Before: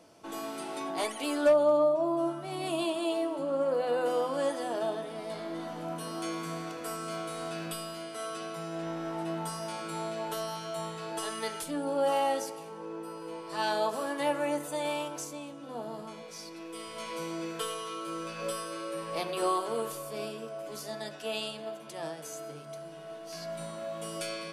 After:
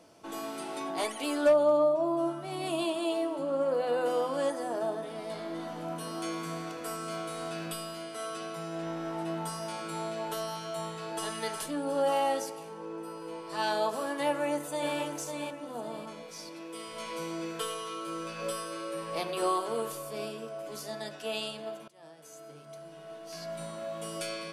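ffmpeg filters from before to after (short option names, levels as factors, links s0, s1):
-filter_complex "[0:a]asettb=1/sr,asplit=3[s0][s1][s2];[s0]atrim=end=4.504[s3];[s1]atrim=start=4.5:end=5.03,asetpts=PTS-STARTPTS,afade=t=in:d=0.004:c=qsin,afade=t=out:st=0.526:d=0.004:c=qsin,equalizer=f=3200:t=o:w=0.98:g=-8.5[s4];[s2]atrim=start=5.026[s5];[s3][s4]acrossfade=d=0.004:c1=hsin:c2=qsin[s6];[s6][s5]acrossfade=d=0.004:c1=qsin:c2=hsin,asplit=2[s7][s8];[s8]afade=t=in:st=10.85:d=0.01,afade=t=out:st=11.3:d=0.01,aecho=0:1:360|720|1080|1440|1800:0.473151|0.212918|0.0958131|0.0431159|0.0194022[s9];[s7][s9]amix=inputs=2:normalize=0,asplit=2[s10][s11];[s11]afade=t=in:st=14.27:d=0.01,afade=t=out:st=14.95:d=0.01,aecho=0:1:550|1100|1650|2200:0.530884|0.18581|0.0650333|0.0227617[s12];[s10][s12]amix=inputs=2:normalize=0,asettb=1/sr,asplit=3[s13][s14][s15];[s13]atrim=end=16.484[s16];[s14]atrim=start=16.48:end=16.92,asetpts=PTS-STARTPTS,afade=t=in:d=0.004:c=qsin,afade=t=out:st=0.436:d=0.004:c=qsin,highpass=84[s17];[s15]atrim=start=16.916[s18];[s16][s17]acrossfade=d=0.004:c1=hsin:c2=qsin[s19];[s19][s18]acrossfade=d=0.004:c1=qsin:c2=hsin,asplit=2[s20][s21];[s20]atrim=end=21.88,asetpts=PTS-STARTPTS,afade=t=out:st=21.876:d=0.004:c=hsin:silence=0.0707946[s22];[s21]atrim=start=21.88,asetpts=PTS-STARTPTS,afade=t=in:d=2.06:c=qsin:silence=0.0707946[s23];[s22][s23]concat=n=2:v=0:a=1"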